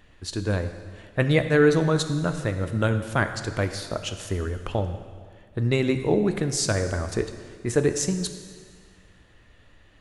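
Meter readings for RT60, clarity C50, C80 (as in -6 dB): 1.8 s, 9.5 dB, 10.5 dB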